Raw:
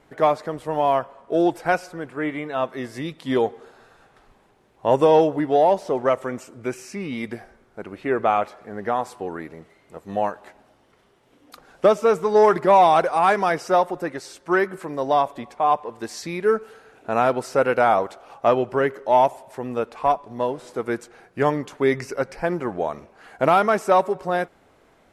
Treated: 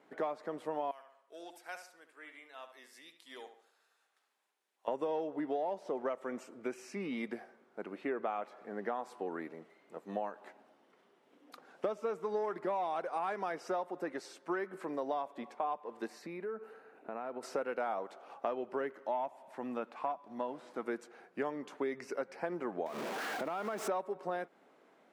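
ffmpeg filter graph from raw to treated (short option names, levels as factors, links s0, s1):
-filter_complex "[0:a]asettb=1/sr,asplit=3[s0][s1][s2];[s0]atrim=end=0.914[s3];[s1]atrim=start=0.91:end=4.88,asetpts=PTS-STARTPTS,afade=t=in:d=0.004:c=qsin,afade=t=out:st=3.966:d=0.004:c=qsin,aderivative,asplit=2[s4][s5];[s5]adelay=71,lowpass=f=3400:p=1,volume=0.355,asplit=2[s6][s7];[s7]adelay=71,lowpass=f=3400:p=1,volume=0.4,asplit=2[s8][s9];[s9]adelay=71,lowpass=f=3400:p=1,volume=0.4,asplit=2[s10][s11];[s11]adelay=71,lowpass=f=3400:p=1,volume=0.4[s12];[s4][s6][s8][s10][s12]amix=inputs=5:normalize=0,atrim=end_sample=175077[s13];[s2]atrim=start=4.876[s14];[s3][s13]acrossfade=d=0.004:c1=hsin:c2=qsin[s15];[s15][s14]acrossfade=d=0.004:c1=qsin:c2=hsin,asettb=1/sr,asplit=3[s16][s17][s18];[s16]atrim=end=16.074[s19];[s17]atrim=start=16.07:end=17.43,asetpts=PTS-STARTPTS,afade=t=in:d=0.004:c=qsin,afade=t=out:st=1.356:d=0.004:c=qsin,bandreject=f=3300:w=7.6,acompressor=threshold=0.0282:ratio=4:attack=3.2:release=140:knee=1:detection=peak,equalizer=f=6100:t=o:w=1.7:g=-10.5[s20];[s18]atrim=start=17.426[s21];[s19][s20]acrossfade=d=0.004:c1=hsin:c2=qsin[s22];[s22][s21]acrossfade=d=0.004:c1=qsin:c2=hsin,asettb=1/sr,asplit=3[s23][s24][s25];[s23]atrim=end=18.924[s26];[s24]atrim=start=18.92:end=20.85,asetpts=PTS-STARTPTS,afade=t=in:d=0.004:c=qsin,afade=t=out:st=1.926:d=0.004:c=qsin,acrossover=split=3600[s27][s28];[s28]acompressor=threshold=0.00178:ratio=4:attack=1:release=60[s29];[s27][s29]amix=inputs=2:normalize=0,equalizer=f=430:w=3:g=-9[s30];[s25]atrim=start=20.846[s31];[s26][s30]acrossfade=d=0.004:c1=hsin:c2=qsin[s32];[s32][s31]acrossfade=d=0.004:c1=qsin:c2=hsin,asettb=1/sr,asplit=3[s33][s34][s35];[s33]atrim=end=22.864[s36];[s34]atrim=start=22.86:end=23.88,asetpts=PTS-STARTPTS,afade=t=in:d=0.004:c=qsin,afade=t=out:st=1.016:d=0.004:c=qsin,aeval=exprs='val(0)+0.5*0.0562*sgn(val(0))':c=same,acompressor=threshold=0.0501:ratio=4:attack=3.2:release=140:knee=1:detection=peak[s37];[s35]atrim=start=23.876[s38];[s36][s37]acrossfade=d=0.004:c1=hsin:c2=qsin[s39];[s39][s38]acrossfade=d=0.004:c1=qsin:c2=hsin,highpass=f=200:w=0.5412,highpass=f=200:w=1.3066,highshelf=f=4400:g=-8,acompressor=threshold=0.0501:ratio=6,volume=0.447"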